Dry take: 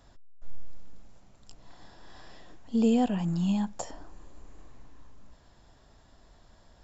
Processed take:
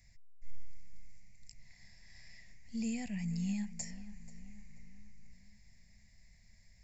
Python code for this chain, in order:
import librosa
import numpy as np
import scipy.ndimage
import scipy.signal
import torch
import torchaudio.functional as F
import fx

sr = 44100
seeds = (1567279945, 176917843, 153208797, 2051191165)

p1 = fx.curve_eq(x, sr, hz=(120.0, 210.0, 320.0, 640.0, 1400.0, 2100.0, 3200.0, 4800.0), db=(0, -5, -23, -16, -23, 14, -14, 4))
p2 = p1 + fx.echo_filtered(p1, sr, ms=484, feedback_pct=49, hz=3700.0, wet_db=-15, dry=0)
y = p2 * 10.0 ** (-4.5 / 20.0)